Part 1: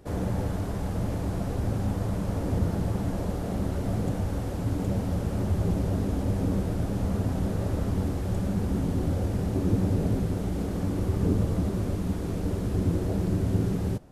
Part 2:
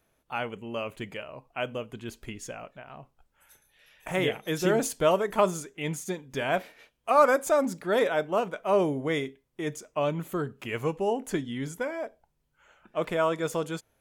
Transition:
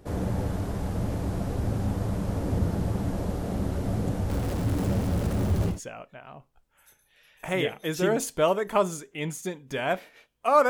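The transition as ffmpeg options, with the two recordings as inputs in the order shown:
-filter_complex "[0:a]asettb=1/sr,asplit=3[a][b][c];[a]atrim=end=4.294[d];[b]atrim=start=4.29:end=5.8,asetpts=PTS-STARTPTS,afade=t=in:d=0.004:c=qsin,afade=t=out:st=1.506:d=0.004:c=qsin,aeval=exprs='val(0)+0.5*0.0237*sgn(val(0))':c=same[e];[c]atrim=start=5.796[f];[d][e]acrossfade=d=0.004:c1=hsin:c2=qsin[g];[g][f]acrossfade=d=0.004:c1=qsin:c2=hsin,apad=whole_dur=10.69,atrim=end=10.69,atrim=end=5.8,asetpts=PTS-STARTPTS[h];[1:a]atrim=start=2.27:end=7.32,asetpts=PTS-STARTPTS[i];[h][i]acrossfade=d=0.16:c1=tri:c2=tri"

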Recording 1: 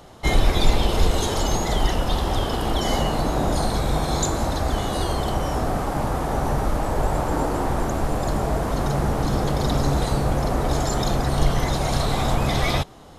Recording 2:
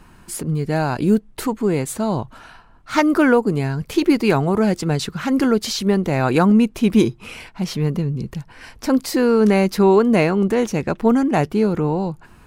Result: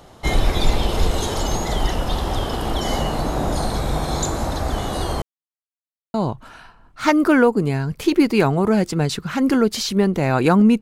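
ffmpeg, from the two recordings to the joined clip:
-filter_complex "[0:a]apad=whole_dur=10.81,atrim=end=10.81,asplit=2[a][b];[a]atrim=end=5.22,asetpts=PTS-STARTPTS,afade=t=out:st=5.216:d=0.004:c=hsin[c];[b]atrim=start=5.22:end=6.14,asetpts=PTS-STARTPTS,volume=0[d];[1:a]atrim=start=2.04:end=6.71,asetpts=PTS-STARTPTS,afade=t=in:d=0.004:c=hsin[e];[c][d][e]concat=n=3:v=0:a=1"

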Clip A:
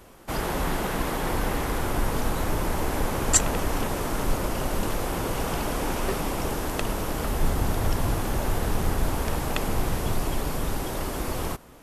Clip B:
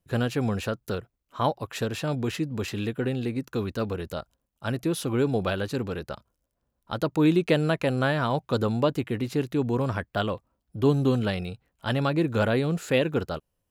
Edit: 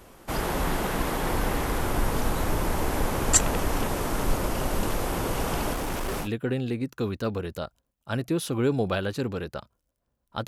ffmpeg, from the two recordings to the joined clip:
-filter_complex "[0:a]asettb=1/sr,asplit=3[a][b][c];[a]atrim=end=5.734[d];[b]atrim=start=5.73:end=6.29,asetpts=PTS-STARTPTS,afade=t=in:d=0.004:c=qsin,afade=t=out:st=0.556:d=0.004:c=qsin,asoftclip=type=hard:threshold=-26.5dB[e];[c]atrim=start=6.286[f];[d][e]acrossfade=d=0.004:c1=hsin:c2=qsin[g];[g][f]acrossfade=d=0.004:c1=qsin:c2=hsin,apad=whole_dur=10.47,atrim=end=10.47,atrim=end=6.29,asetpts=PTS-STARTPTS[h];[1:a]atrim=start=2.76:end=7.02,asetpts=PTS-STARTPTS[i];[h][i]acrossfade=d=0.08:c1=tri:c2=tri"

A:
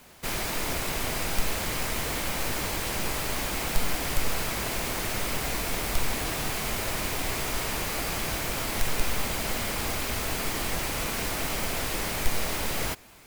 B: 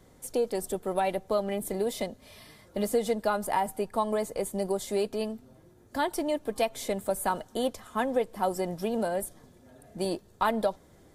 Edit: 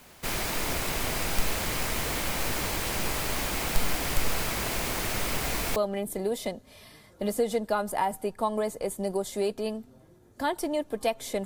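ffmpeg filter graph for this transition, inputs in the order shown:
-filter_complex "[0:a]apad=whole_dur=11.45,atrim=end=11.45,atrim=end=5.762[a];[1:a]atrim=start=1.308:end=7[b];[a][b]acrossfade=d=0.004:c1=hsin:c2=hsin"

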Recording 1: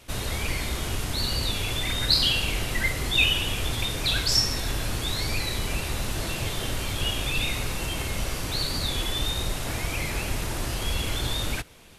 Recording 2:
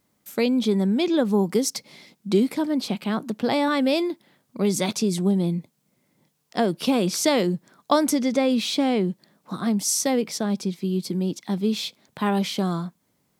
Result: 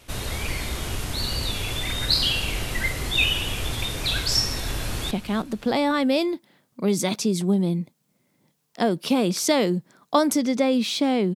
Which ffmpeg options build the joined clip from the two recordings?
-filter_complex "[0:a]apad=whole_dur=11.35,atrim=end=11.35,atrim=end=5.112[a];[1:a]atrim=start=2.878:end=9.12[b];[a][b]acrossfade=d=0.004:c1=hsin:c2=hsin,asplit=2[c][d];[d]afade=t=in:st=4.66:d=0.01,afade=t=out:st=5.11:d=0.01,aecho=0:1:310|620|930|1240:0.199526|0.0897868|0.0404041|0.0181818[e];[c][e]amix=inputs=2:normalize=0"

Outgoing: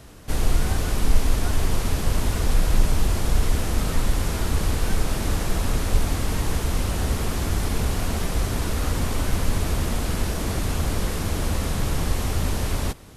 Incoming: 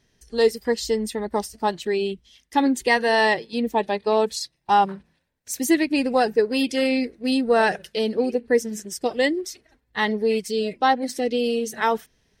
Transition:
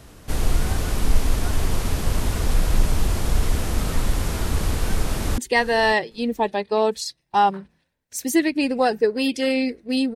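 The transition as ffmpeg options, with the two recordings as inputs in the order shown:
-filter_complex "[0:a]apad=whole_dur=10.15,atrim=end=10.15,atrim=end=5.382[a];[1:a]atrim=start=2.728:end=7.5[b];[a][b]acrossfade=d=0.004:c1=hsin:c2=hsin,asplit=2[c][d];[d]afade=t=in:st=5.01:d=0.01,afade=t=out:st=5.38:d=0.01,aecho=0:1:550|1100:0.16788|0.0251821[e];[c][e]amix=inputs=2:normalize=0"

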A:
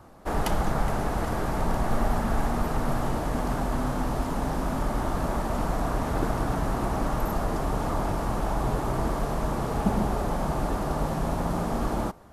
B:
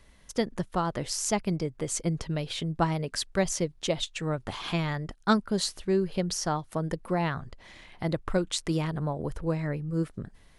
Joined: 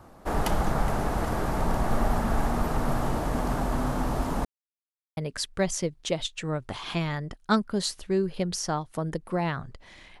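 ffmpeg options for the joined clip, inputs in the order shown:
-filter_complex "[0:a]apad=whole_dur=10.2,atrim=end=10.2,asplit=2[a][b];[a]atrim=end=4.45,asetpts=PTS-STARTPTS,afade=t=out:st=4.446:d=0.004:c=hsin[c];[b]atrim=start=4.45:end=5.17,asetpts=PTS-STARTPTS,volume=0[d];[1:a]atrim=start=2.95:end=7.98,asetpts=PTS-STARTPTS,afade=t=in:d=0.004:c=hsin[e];[c][d][e]concat=n=3:v=0:a=1"

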